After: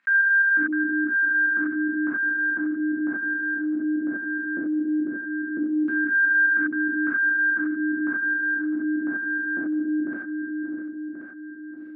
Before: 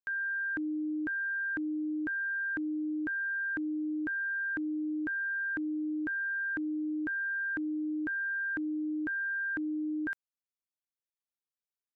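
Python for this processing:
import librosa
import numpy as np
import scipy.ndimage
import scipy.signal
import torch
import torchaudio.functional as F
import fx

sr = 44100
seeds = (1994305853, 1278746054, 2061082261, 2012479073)

y = x + 10.0 ** (-11.5 / 20.0) * np.pad(x, (int(655 * sr / 1000.0), 0))[:len(x)]
y = fx.volume_shaper(y, sr, bpm=144, per_beat=2, depth_db=-21, release_ms=147.0, shape='fast start')
y = fx.filter_lfo_lowpass(y, sr, shape='saw_down', hz=0.17, low_hz=390.0, high_hz=1800.0, q=2.1)
y = scipy.signal.sosfilt(scipy.signal.butter(4, 210.0, 'highpass', fs=sr, output='sos'), y)
y = fx.band_shelf(y, sr, hz=580.0, db=-11.0, octaves=1.7)
y = fx.echo_feedback(y, sr, ms=1083, feedback_pct=20, wet_db=-17)
y = fx.rev_gated(y, sr, seeds[0], gate_ms=110, shape='flat', drr_db=-6.5)
y = fx.env_flatten(y, sr, amount_pct=50)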